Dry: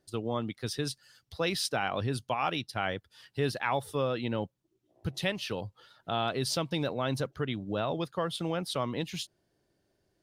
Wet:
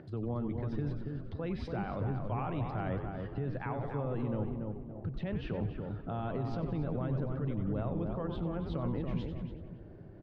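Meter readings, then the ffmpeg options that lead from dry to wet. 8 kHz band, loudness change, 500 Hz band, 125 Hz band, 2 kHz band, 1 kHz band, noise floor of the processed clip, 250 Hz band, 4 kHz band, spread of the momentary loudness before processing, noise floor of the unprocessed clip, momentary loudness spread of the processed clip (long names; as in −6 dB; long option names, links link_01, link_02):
below −30 dB, −3.5 dB, −5.5 dB, +2.5 dB, −12.5 dB, −7.5 dB, −49 dBFS, 0.0 dB, −21.0 dB, 9 LU, −77 dBFS, 6 LU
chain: -filter_complex "[0:a]aemphasis=mode=reproduction:type=riaa,acompressor=threshold=-26dB:ratio=6,highpass=frequency=100:width=0.5412,highpass=frequency=100:width=1.3066,acompressor=mode=upward:threshold=-39dB:ratio=2.5,lowpass=2000,asplit=2[link_01][link_02];[link_02]asplit=6[link_03][link_04][link_05][link_06][link_07][link_08];[link_03]adelay=93,afreqshift=-130,volume=-10dB[link_09];[link_04]adelay=186,afreqshift=-260,volume=-15.7dB[link_10];[link_05]adelay=279,afreqshift=-390,volume=-21.4dB[link_11];[link_06]adelay=372,afreqshift=-520,volume=-27dB[link_12];[link_07]adelay=465,afreqshift=-650,volume=-32.7dB[link_13];[link_08]adelay=558,afreqshift=-780,volume=-38.4dB[link_14];[link_09][link_10][link_11][link_12][link_13][link_14]amix=inputs=6:normalize=0[link_15];[link_01][link_15]amix=inputs=2:normalize=0,alimiter=level_in=4dB:limit=-24dB:level=0:latency=1:release=51,volume=-4dB,asplit=2[link_16][link_17];[link_17]adelay=283,lowpass=frequency=1300:poles=1,volume=-4dB,asplit=2[link_18][link_19];[link_19]adelay=283,lowpass=frequency=1300:poles=1,volume=0.41,asplit=2[link_20][link_21];[link_21]adelay=283,lowpass=frequency=1300:poles=1,volume=0.41,asplit=2[link_22][link_23];[link_23]adelay=283,lowpass=frequency=1300:poles=1,volume=0.41,asplit=2[link_24][link_25];[link_25]adelay=283,lowpass=frequency=1300:poles=1,volume=0.41[link_26];[link_18][link_20][link_22][link_24][link_26]amix=inputs=5:normalize=0[link_27];[link_16][link_27]amix=inputs=2:normalize=0"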